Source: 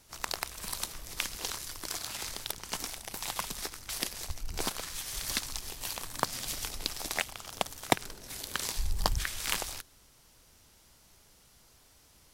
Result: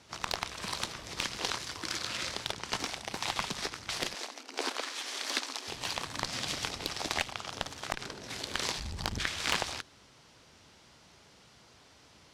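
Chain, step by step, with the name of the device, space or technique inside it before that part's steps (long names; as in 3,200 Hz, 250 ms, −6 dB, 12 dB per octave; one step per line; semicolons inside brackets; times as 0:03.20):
0:01.78–0:02.28: healed spectral selection 370–1,200 Hz
valve radio (band-pass filter 100–4,700 Hz; tube saturation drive 22 dB, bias 0.5; saturating transformer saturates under 880 Hz)
0:04.14–0:05.68: elliptic high-pass filter 250 Hz, stop band 40 dB
level +8.5 dB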